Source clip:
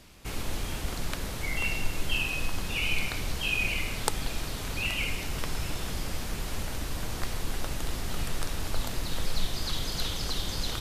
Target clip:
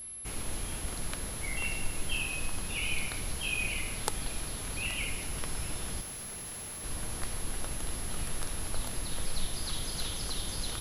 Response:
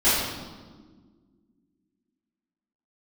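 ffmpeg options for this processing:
-filter_complex "[0:a]asettb=1/sr,asplit=3[link_01][link_02][link_03];[link_01]atrim=end=6.014[link_04];[link_02]atrim=start=6.01:end=6.84,asetpts=PTS-STARTPTS,afade=type=in:duration=0.004:curve=qsin,afade=type=out:start_time=0.826:duration=0.004:curve=qsin,aeval=exprs='0.0158*(abs(mod(val(0)/0.0158+3,4)-2)-1)':channel_layout=same[link_05];[link_03]atrim=start=6.836[link_06];[link_04][link_05]acrossfade=duration=0.004:curve1=hsin:curve2=qsin[link_07];[link_07][link_06]acrossfade=duration=0.004:curve1=qsin:curve2=hsin,aeval=exprs='val(0)+0.0158*sin(2*PI*11000*n/s)':channel_layout=same,volume=-4.5dB"

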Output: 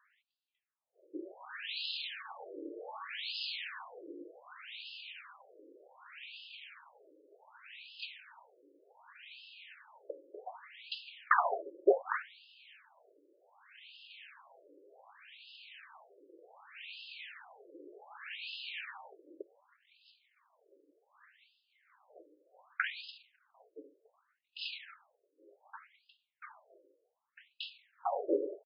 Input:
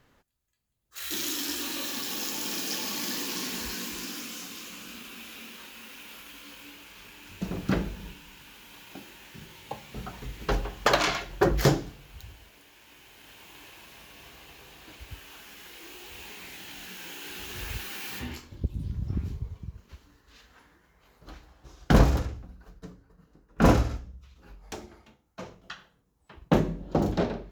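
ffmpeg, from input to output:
ffmpeg -i in.wav -af "atempo=0.96,afftfilt=real='re*between(b*sr/1024,400*pow(3700/400,0.5+0.5*sin(2*PI*0.66*pts/sr))/1.41,400*pow(3700/400,0.5+0.5*sin(2*PI*0.66*pts/sr))*1.41)':imag='im*between(b*sr/1024,400*pow(3700/400,0.5+0.5*sin(2*PI*0.66*pts/sr))/1.41,400*pow(3700/400,0.5+0.5*sin(2*PI*0.66*pts/sr))*1.41)':win_size=1024:overlap=0.75" out.wav

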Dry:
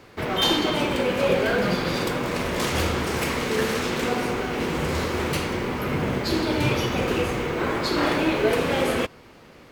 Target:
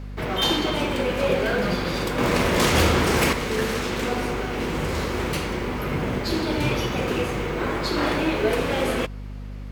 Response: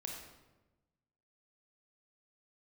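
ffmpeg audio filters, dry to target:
-filter_complex "[0:a]asettb=1/sr,asplit=3[link_01][link_02][link_03];[link_01]atrim=end=2.184[link_04];[link_02]atrim=start=2.18:end=3.33,asetpts=PTS-STARTPTS,afade=type=in:duration=0.004:curve=qsin,afade=type=out:start_time=1.146:duration=0.004:curve=qsin,acontrast=65[link_05];[link_03]atrim=start=3.326[link_06];[link_04][link_05]acrossfade=duration=0.004:curve1=hsin:curve2=qsin[link_07];[link_07][link_06]acrossfade=duration=0.004:curve1=qsin:curve2=hsin,aeval=exprs='val(0)+0.0251*(sin(2*PI*50*n/s)+sin(2*PI*2*50*n/s)/2+sin(2*PI*3*50*n/s)/3+sin(2*PI*4*50*n/s)/4+sin(2*PI*5*50*n/s)/5)':channel_layout=same,volume=-1dB"

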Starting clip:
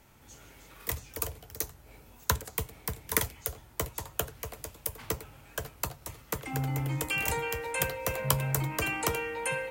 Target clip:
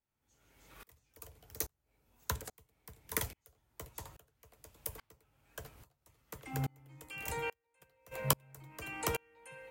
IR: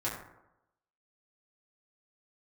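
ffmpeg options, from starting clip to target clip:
-filter_complex "[0:a]asplit=3[link_01][link_02][link_03];[link_01]afade=type=out:start_time=7.52:duration=0.02[link_04];[link_02]agate=range=-18dB:threshold=-24dB:ratio=16:detection=peak,afade=type=in:start_time=7.52:duration=0.02,afade=type=out:start_time=8.11:duration=0.02[link_05];[link_03]afade=type=in:start_time=8.11:duration=0.02[link_06];[link_04][link_05][link_06]amix=inputs=3:normalize=0,aeval=exprs='val(0)*pow(10,-33*if(lt(mod(-1.2*n/s,1),2*abs(-1.2)/1000),1-mod(-1.2*n/s,1)/(2*abs(-1.2)/1000),(mod(-1.2*n/s,1)-2*abs(-1.2)/1000)/(1-2*abs(-1.2)/1000))/20)':channel_layout=same,volume=-1.5dB"

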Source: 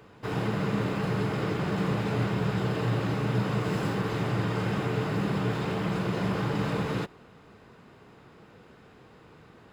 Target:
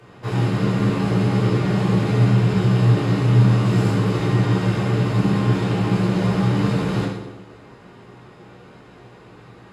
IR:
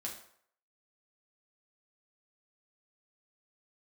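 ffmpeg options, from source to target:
-filter_complex "[0:a]acrossover=split=400|3000[link_01][link_02][link_03];[link_02]acompressor=threshold=-42dB:ratio=1.5[link_04];[link_01][link_04][link_03]amix=inputs=3:normalize=0[link_05];[1:a]atrim=start_sample=2205,asetrate=23814,aresample=44100[link_06];[link_05][link_06]afir=irnorm=-1:irlink=0,volume=4.5dB"

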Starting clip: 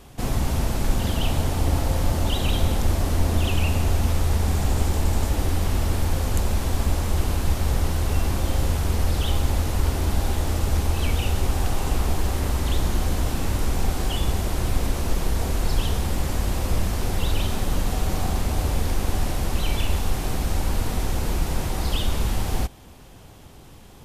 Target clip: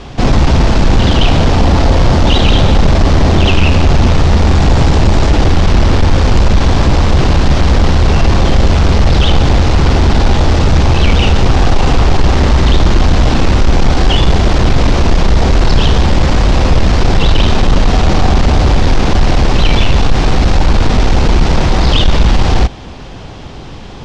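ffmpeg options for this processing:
ffmpeg -i in.wav -af "aeval=exprs='0.473*sin(PI/2*3.16*val(0)/0.473)':channel_layout=same,lowpass=frequency=5500:width=0.5412,lowpass=frequency=5500:width=1.3066,equalizer=frequency=86:width_type=o:width=0.31:gain=-3,volume=4dB" out.wav

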